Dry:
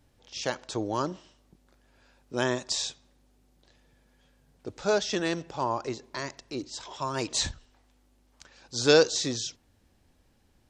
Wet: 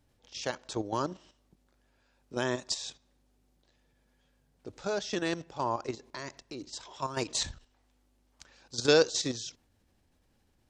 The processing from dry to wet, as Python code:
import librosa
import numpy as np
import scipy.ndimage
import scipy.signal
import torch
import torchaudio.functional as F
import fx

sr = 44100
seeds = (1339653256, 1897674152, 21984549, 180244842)

y = fx.level_steps(x, sr, step_db=10)